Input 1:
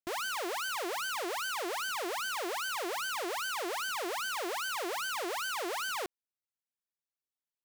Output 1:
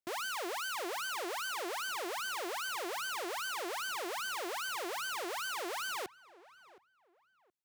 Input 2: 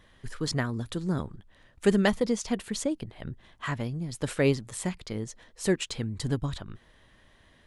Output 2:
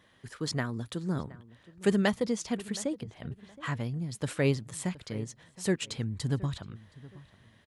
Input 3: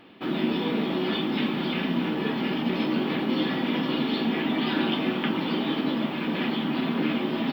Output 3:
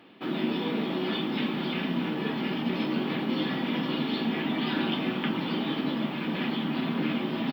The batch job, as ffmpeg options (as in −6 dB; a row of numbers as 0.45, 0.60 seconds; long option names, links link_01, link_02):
-filter_complex "[0:a]highpass=110,asubboost=boost=2:cutoff=180,asplit=2[link_01][link_02];[link_02]adelay=720,lowpass=frequency=2000:poles=1,volume=-19dB,asplit=2[link_03][link_04];[link_04]adelay=720,lowpass=frequency=2000:poles=1,volume=0.28[link_05];[link_03][link_05]amix=inputs=2:normalize=0[link_06];[link_01][link_06]amix=inputs=2:normalize=0,volume=-2.5dB"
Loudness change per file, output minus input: −2.5, −2.5, −3.0 LU